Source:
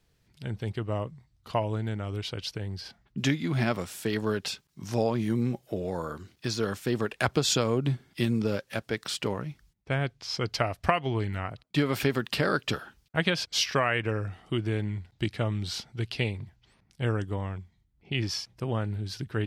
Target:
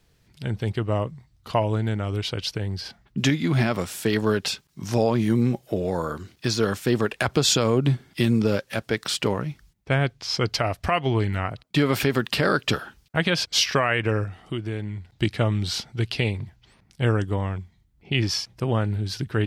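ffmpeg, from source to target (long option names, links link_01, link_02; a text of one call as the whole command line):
ffmpeg -i in.wav -filter_complex "[0:a]asettb=1/sr,asplit=3[link_01][link_02][link_03];[link_01]atrim=end=14.244[link_04];[link_02]atrim=start=14.24:end=15.1,asetpts=PTS-STARTPTS,afade=type=in:duration=0.004:curve=qsin,afade=type=out:start_time=0.856:duration=0.004:curve=qsin,acompressor=threshold=-45dB:ratio=1.5[link_05];[link_03]atrim=start=15.096[link_06];[link_04][link_05]acrossfade=duration=0.004:curve1=hsin:curve2=qsin[link_07];[link_07][link_06]acrossfade=duration=0.004:curve1=qsin:curve2=hsin,alimiter=level_in=15dB:limit=-1dB:release=50:level=0:latency=1,volume=-8.5dB" out.wav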